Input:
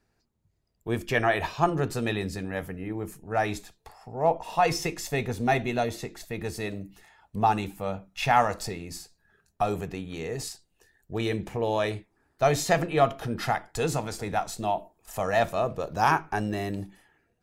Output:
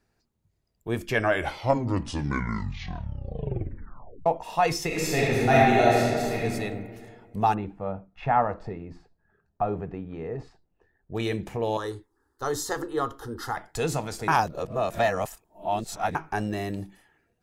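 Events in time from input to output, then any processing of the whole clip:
1.05 tape stop 3.21 s
4.86–6.39 reverb throw, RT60 2 s, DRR -6.5 dB
7.54–11.15 LPF 1300 Hz
11.77–13.57 fixed phaser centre 650 Hz, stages 6
14.28–16.15 reverse

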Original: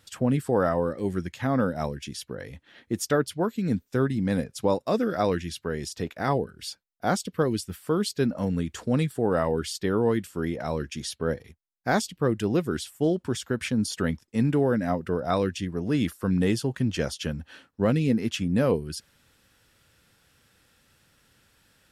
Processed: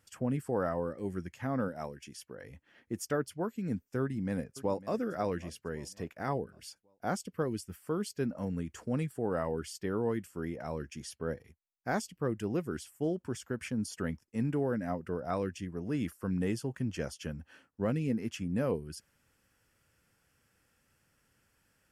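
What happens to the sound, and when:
1.68–2.44 low shelf 180 Hz -9.5 dB
4.01–4.94 echo throw 0.55 s, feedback 45%, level -17 dB
whole clip: bell 3800 Hz -13 dB 0.37 oct; gain -8.5 dB

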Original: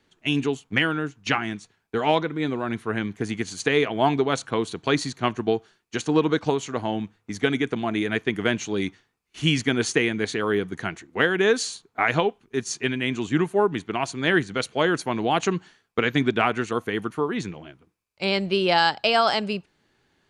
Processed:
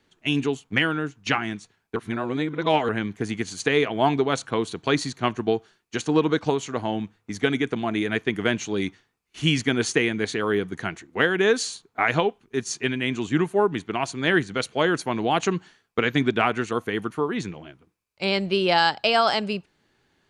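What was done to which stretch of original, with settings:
1.96–2.89 reverse

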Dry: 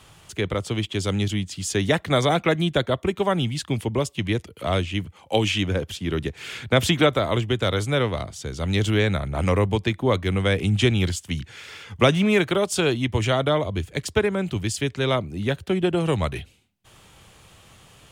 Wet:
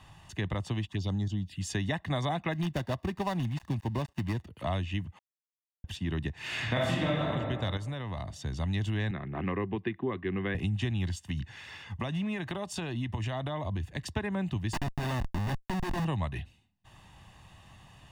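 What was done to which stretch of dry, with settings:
0.87–1.61 envelope phaser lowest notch 390 Hz, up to 2700 Hz, full sweep at -19.5 dBFS
2.53–4.48 switching dead time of 0.17 ms
5.19–5.84 mute
6.38–7.21 reverb throw, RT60 1.4 s, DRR -7.5 dB
7.77–8.36 compressor 4:1, threshold -30 dBFS
9.11–10.55 speaker cabinet 190–2800 Hz, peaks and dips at 380 Hz +10 dB, 610 Hz -9 dB, 890 Hz -9 dB
11.29–14.04 compressor, threshold -25 dBFS
14.73–16.05 Schmitt trigger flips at -27 dBFS
whole clip: high shelf 5000 Hz -11.5 dB; comb 1.1 ms, depth 64%; compressor 4:1, threshold -24 dBFS; gain -4.5 dB

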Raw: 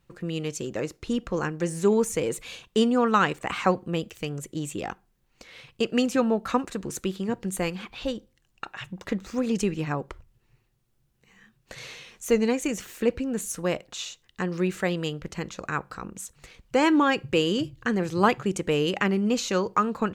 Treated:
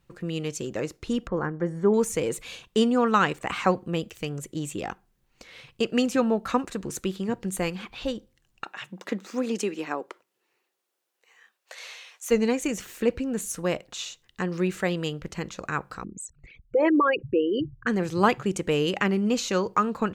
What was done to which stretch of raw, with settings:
1.27–1.94 polynomial smoothing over 41 samples
8.64–12.3 HPF 170 Hz -> 680 Hz 24 dB/oct
16.04–17.87 formant sharpening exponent 3

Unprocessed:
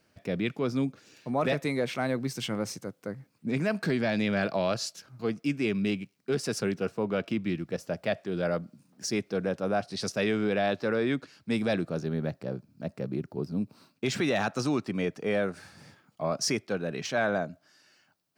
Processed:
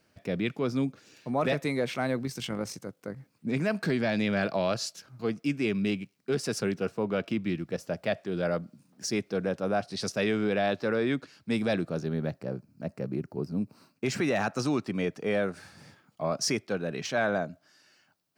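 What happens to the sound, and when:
2.23–3.17 AM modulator 47 Hz, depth 25%
12.38–14.58 bell 3500 Hz -8.5 dB 0.35 oct

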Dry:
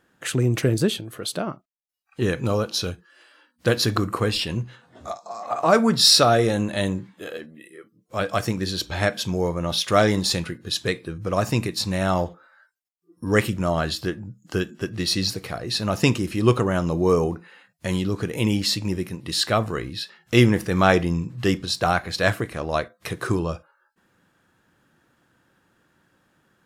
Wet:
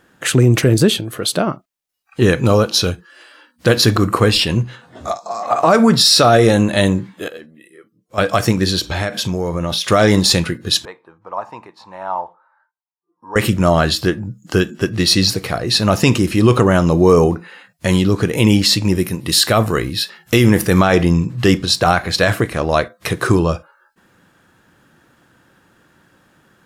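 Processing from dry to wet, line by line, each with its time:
7.28–8.18 gain -10 dB
8.79–9.9 compressor, threshold -26 dBFS
10.85–13.36 band-pass 920 Hz, Q 6.3
18.95–20.79 bell 13000 Hz +9.5 dB 0.9 oct
whole clip: maximiser +11 dB; gain -1 dB

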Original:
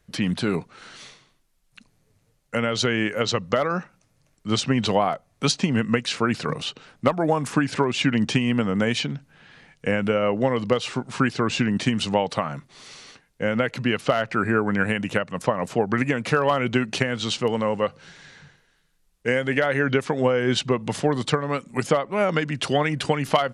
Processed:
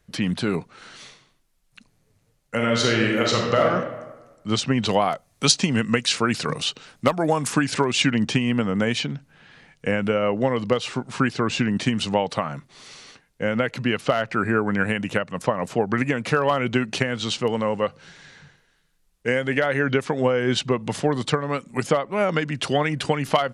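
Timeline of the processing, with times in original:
2.55–3.67 reverb throw, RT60 1.2 s, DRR -0.5 dB
4.89–8.11 high shelf 3400 Hz +9.5 dB

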